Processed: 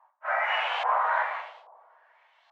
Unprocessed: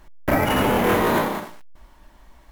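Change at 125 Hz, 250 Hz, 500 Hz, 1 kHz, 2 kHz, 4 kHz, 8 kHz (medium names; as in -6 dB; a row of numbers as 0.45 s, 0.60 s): under -40 dB, under -40 dB, -13.5 dB, -3.0 dB, -2.0 dB, -4.5 dB, under -25 dB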